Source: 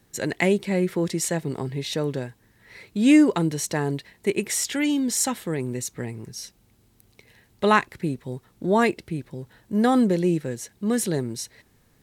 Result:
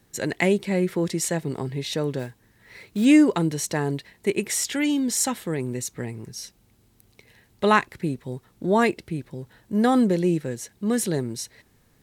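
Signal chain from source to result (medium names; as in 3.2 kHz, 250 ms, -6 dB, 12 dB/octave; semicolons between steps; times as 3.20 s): 2.19–3.06 s: block-companded coder 5-bit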